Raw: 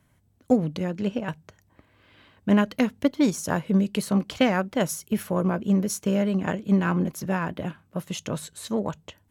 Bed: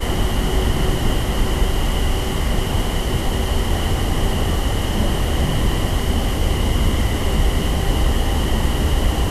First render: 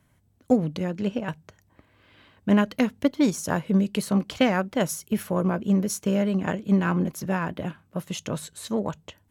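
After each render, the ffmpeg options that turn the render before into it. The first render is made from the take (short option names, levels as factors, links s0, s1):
-af anull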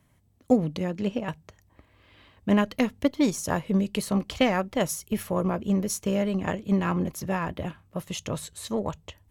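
-af "bandreject=f=1500:w=9.1,asubboost=boost=5:cutoff=75"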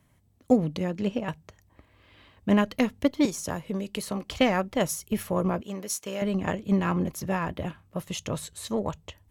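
-filter_complex "[0:a]asettb=1/sr,asplit=3[s0][s1][s2];[s0]atrim=end=3.254[s3];[s1]atrim=start=3.25:end=4.3,asetpts=PTS-STARTPTS,afade=t=in:d=0.004:c=qsin,afade=t=out:st=1.046:d=0.004:c=qsin,acrossover=split=320|6100[s4][s5][s6];[s4]acompressor=threshold=0.02:ratio=4[s7];[s5]acompressor=threshold=0.0282:ratio=4[s8];[s6]acompressor=threshold=0.0141:ratio=4[s9];[s7][s8][s9]amix=inputs=3:normalize=0[s10];[s2]atrim=start=4.296[s11];[s3][s10]acrossfade=d=0.004:c1=hsin:c2=qsin[s12];[s12][s11]acrossfade=d=0.004:c1=qsin:c2=hsin,asettb=1/sr,asplit=3[s13][s14][s15];[s13]atrim=end=5.614[s16];[s14]atrim=start=5.61:end=6.22,asetpts=PTS-STARTPTS,afade=t=in:d=0.004:c=qsin,afade=t=out:st=0.606:d=0.004:c=qsin,highpass=f=810:p=1[s17];[s15]atrim=start=6.216[s18];[s16][s17]acrossfade=d=0.004:c1=hsin:c2=qsin[s19];[s19][s18]acrossfade=d=0.004:c1=qsin:c2=hsin"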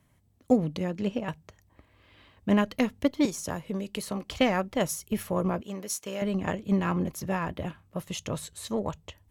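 -af "volume=0.841"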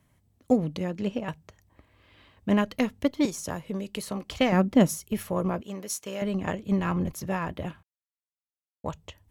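-filter_complex "[0:a]asettb=1/sr,asplit=3[s0][s1][s2];[s0]atrim=end=4.524[s3];[s1]atrim=start=4.52:end=4.98,asetpts=PTS-STARTPTS,afade=t=in:d=0.004:c=qsin,afade=t=out:st=0.456:d=0.004:c=qsin,equalizer=f=230:w=1:g=13.5[s4];[s2]atrim=start=4.976[s5];[s3][s4]acrossfade=d=0.004:c1=hsin:c2=qsin[s6];[s6][s5]acrossfade=d=0.004:c1=qsin:c2=hsin,asettb=1/sr,asplit=3[s7][s8][s9];[s7]atrim=end=6.614[s10];[s8]atrim=start=6.61:end=7.13,asetpts=PTS-STARTPTS,afade=t=in:d=0.004:c=qsin,afade=t=out:st=0.516:d=0.004:c=qsin,asubboost=boost=10.5:cutoff=160[s11];[s9]atrim=start=7.126[s12];[s10][s11]acrossfade=d=0.004:c1=hsin:c2=qsin[s13];[s13][s12]acrossfade=d=0.004:c1=qsin:c2=hsin,asplit=3[s14][s15][s16];[s14]atrim=end=7.83,asetpts=PTS-STARTPTS,afade=t=out:st=7.826:d=0.004:c=hsin[s17];[s15]atrim=start=7.83:end=8.84,asetpts=PTS-STARTPTS,volume=0[s18];[s16]atrim=start=8.84,asetpts=PTS-STARTPTS,afade=t=in:d=0.004:c=hsin[s19];[s17][s18][s19]concat=n=3:v=0:a=1"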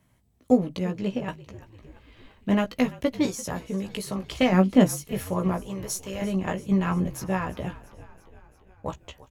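-filter_complex "[0:a]asplit=2[s0][s1];[s1]adelay=16,volume=0.562[s2];[s0][s2]amix=inputs=2:normalize=0,asplit=7[s3][s4][s5][s6][s7][s8][s9];[s4]adelay=341,afreqshift=-48,volume=0.112[s10];[s5]adelay=682,afreqshift=-96,volume=0.0716[s11];[s6]adelay=1023,afreqshift=-144,volume=0.0457[s12];[s7]adelay=1364,afreqshift=-192,volume=0.0295[s13];[s8]adelay=1705,afreqshift=-240,volume=0.0188[s14];[s9]adelay=2046,afreqshift=-288,volume=0.012[s15];[s3][s10][s11][s12][s13][s14][s15]amix=inputs=7:normalize=0"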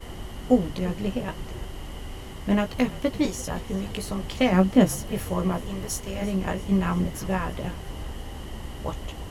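-filter_complex "[1:a]volume=0.126[s0];[0:a][s0]amix=inputs=2:normalize=0"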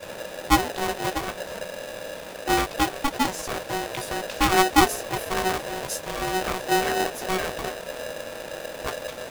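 -af "aeval=exprs='val(0)*sgn(sin(2*PI*560*n/s))':c=same"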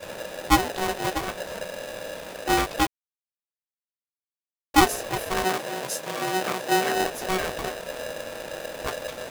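-filter_complex "[0:a]asettb=1/sr,asplit=3[s0][s1][s2];[s0]atrim=end=5.444[s3];[s1]atrim=start=5.44:end=6.95,asetpts=PTS-STARTPTS,afade=t=in:d=0.004:c=qsin,afade=t=out:st=1.506:d=0.004:c=qsin,highpass=f=130:w=0.5412,highpass=f=130:w=1.3066[s4];[s2]atrim=start=6.946[s5];[s3][s4]acrossfade=d=0.004:c1=hsin:c2=qsin[s6];[s6][s5]acrossfade=d=0.004:c1=qsin:c2=hsin,asplit=3[s7][s8][s9];[s7]atrim=end=2.87,asetpts=PTS-STARTPTS,afade=t=out:st=2.866:d=0.004:c=hsin[s10];[s8]atrim=start=2.87:end=4.74,asetpts=PTS-STARTPTS,volume=0[s11];[s9]atrim=start=4.74,asetpts=PTS-STARTPTS,afade=t=in:d=0.004:c=hsin[s12];[s10][s11][s12]concat=n=3:v=0:a=1"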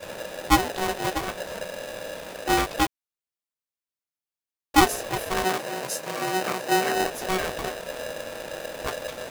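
-filter_complex "[0:a]asettb=1/sr,asplit=3[s0][s1][s2];[s0]atrim=end=5.604[s3];[s1]atrim=start=5.6:end=7.11,asetpts=PTS-STARTPTS,afade=t=in:d=0.004:c=qsin,afade=t=out:st=1.506:d=0.004:c=qsin,bandreject=f=3400:w=12[s4];[s2]atrim=start=7.106[s5];[s3][s4]acrossfade=d=0.004:c1=hsin:c2=qsin[s6];[s6][s5]acrossfade=d=0.004:c1=qsin:c2=hsin"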